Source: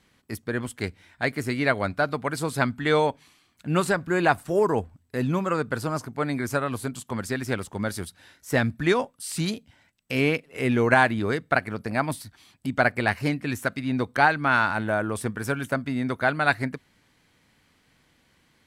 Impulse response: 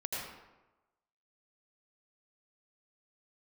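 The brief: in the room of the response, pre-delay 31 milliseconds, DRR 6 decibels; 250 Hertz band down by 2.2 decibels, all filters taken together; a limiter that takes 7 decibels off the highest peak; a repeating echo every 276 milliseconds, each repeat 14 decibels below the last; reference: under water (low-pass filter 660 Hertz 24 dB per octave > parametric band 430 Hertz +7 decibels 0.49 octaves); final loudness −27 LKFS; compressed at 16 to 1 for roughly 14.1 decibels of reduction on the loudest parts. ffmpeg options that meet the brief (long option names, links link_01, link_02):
-filter_complex "[0:a]equalizer=frequency=250:width_type=o:gain=-4.5,acompressor=threshold=-28dB:ratio=16,alimiter=limit=-22.5dB:level=0:latency=1,aecho=1:1:276|552:0.2|0.0399,asplit=2[link_01][link_02];[1:a]atrim=start_sample=2205,adelay=31[link_03];[link_02][link_03]afir=irnorm=-1:irlink=0,volume=-9dB[link_04];[link_01][link_04]amix=inputs=2:normalize=0,lowpass=frequency=660:width=0.5412,lowpass=frequency=660:width=1.3066,equalizer=frequency=430:width_type=o:width=0.49:gain=7,volume=7dB"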